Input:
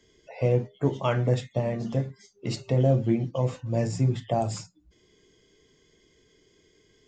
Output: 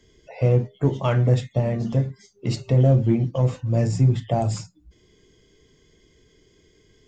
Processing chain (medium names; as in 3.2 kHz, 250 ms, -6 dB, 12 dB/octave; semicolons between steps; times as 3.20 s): in parallel at -11 dB: hard clipper -24 dBFS, distortion -8 dB; on the sum: bass shelf 150 Hz +9 dB